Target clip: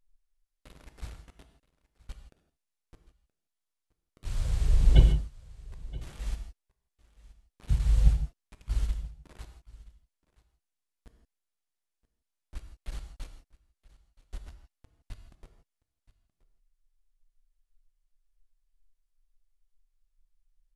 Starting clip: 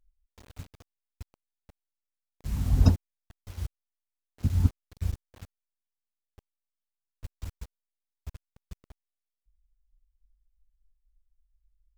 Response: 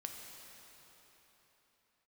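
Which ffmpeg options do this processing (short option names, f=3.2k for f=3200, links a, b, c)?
-filter_complex "[0:a]aecho=1:1:562:0.0891[a];[1:a]atrim=start_sample=2205,atrim=end_sample=4410[b];[a][b]afir=irnorm=-1:irlink=0,asetrate=25442,aresample=44100,volume=4.5dB"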